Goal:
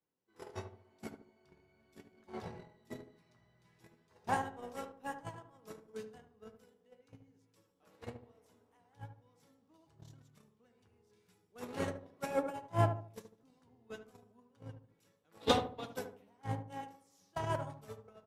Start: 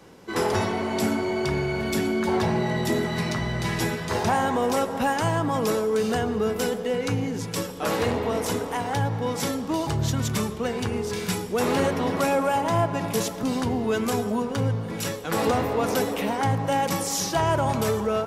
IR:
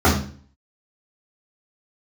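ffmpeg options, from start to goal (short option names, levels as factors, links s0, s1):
-filter_complex "[0:a]asplit=3[s0][s1][s2];[s0]afade=t=out:st=15.4:d=0.02[s3];[s1]equalizer=f=3600:t=o:w=0.54:g=14.5,afade=t=in:st=15.4:d=0.02,afade=t=out:st=15.95:d=0.02[s4];[s2]afade=t=in:st=15.95:d=0.02[s5];[s3][s4][s5]amix=inputs=3:normalize=0,agate=range=0.00447:threshold=0.126:ratio=16:detection=peak,flanger=delay=6.1:depth=5.3:regen=71:speed=0.96:shape=triangular,asplit=2[s6][s7];[s7]adelay=74,lowpass=f=990:p=1,volume=0.447,asplit=2[s8][s9];[s9]adelay=74,lowpass=f=990:p=1,volume=0.39,asplit=2[s10][s11];[s11]adelay=74,lowpass=f=990:p=1,volume=0.39,asplit=2[s12][s13];[s13]adelay=74,lowpass=f=990:p=1,volume=0.39,asplit=2[s14][s15];[s15]adelay=74,lowpass=f=990:p=1,volume=0.39[s16];[s6][s8][s10][s12][s14][s16]amix=inputs=6:normalize=0,volume=2.66"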